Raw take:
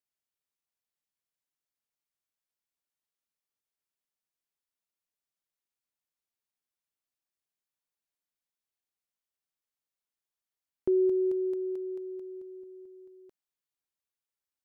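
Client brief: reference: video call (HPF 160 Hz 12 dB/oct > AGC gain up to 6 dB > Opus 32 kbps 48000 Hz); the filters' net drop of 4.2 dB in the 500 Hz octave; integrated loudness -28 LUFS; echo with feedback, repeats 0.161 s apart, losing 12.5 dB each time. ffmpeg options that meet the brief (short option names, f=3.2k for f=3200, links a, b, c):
-af "highpass=160,equalizer=f=500:t=o:g=-7,aecho=1:1:161|322|483:0.237|0.0569|0.0137,dynaudnorm=m=6dB,volume=5dB" -ar 48000 -c:a libopus -b:a 32k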